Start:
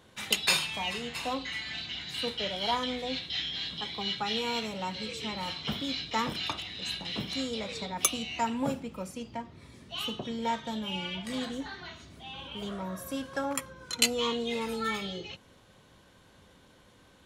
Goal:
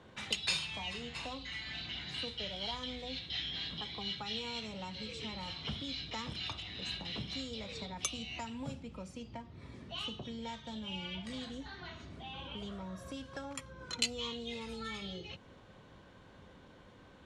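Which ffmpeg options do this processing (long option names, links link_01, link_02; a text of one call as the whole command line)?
ffmpeg -i in.wav -filter_complex "[0:a]lowpass=frequency=10000:width=0.5412,lowpass=frequency=10000:width=1.3066,aemphasis=mode=reproduction:type=75fm,acrossover=split=120|3000[link_01][link_02][link_03];[link_02]acompressor=threshold=-47dB:ratio=4[link_04];[link_01][link_04][link_03]amix=inputs=3:normalize=0,volume=1.5dB" out.wav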